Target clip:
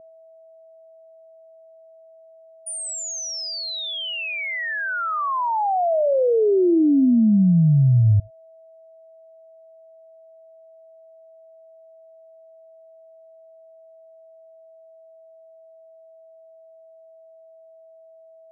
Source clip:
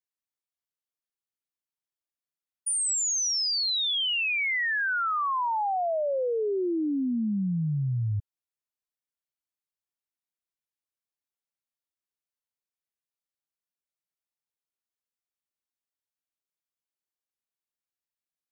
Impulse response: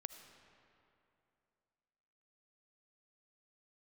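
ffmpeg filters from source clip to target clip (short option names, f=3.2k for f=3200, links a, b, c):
-filter_complex "[0:a]aeval=exprs='val(0)+0.00251*sin(2*PI*650*n/s)':c=same,tiltshelf=f=970:g=8,asplit=2[a][b];[1:a]atrim=start_sample=2205,afade=t=out:st=0.15:d=0.01,atrim=end_sample=7056[c];[b][c]afir=irnorm=-1:irlink=0,volume=3.5dB[d];[a][d]amix=inputs=2:normalize=0,volume=-1dB"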